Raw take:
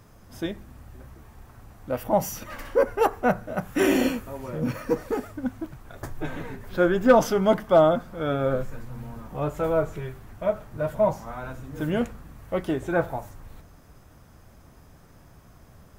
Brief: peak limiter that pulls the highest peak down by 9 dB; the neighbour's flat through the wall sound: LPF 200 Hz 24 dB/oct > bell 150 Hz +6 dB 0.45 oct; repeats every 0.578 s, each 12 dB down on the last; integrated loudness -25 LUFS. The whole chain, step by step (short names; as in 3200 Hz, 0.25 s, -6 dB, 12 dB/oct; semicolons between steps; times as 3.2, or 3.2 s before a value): limiter -17 dBFS; LPF 200 Hz 24 dB/oct; bell 150 Hz +6 dB 0.45 oct; feedback echo 0.578 s, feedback 25%, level -12 dB; gain +10.5 dB